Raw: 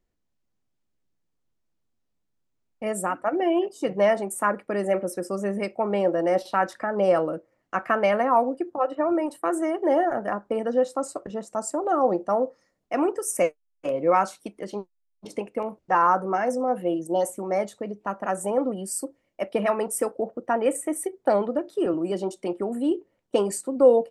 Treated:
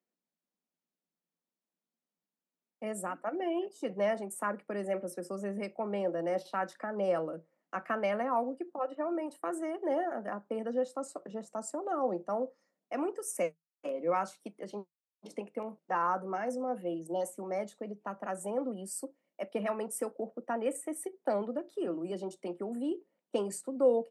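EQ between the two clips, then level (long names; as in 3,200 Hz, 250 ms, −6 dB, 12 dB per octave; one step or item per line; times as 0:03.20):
dynamic equaliser 770 Hz, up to −4 dB, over −32 dBFS, Q 0.82
Chebyshev high-pass with heavy ripple 160 Hz, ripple 3 dB
−6.5 dB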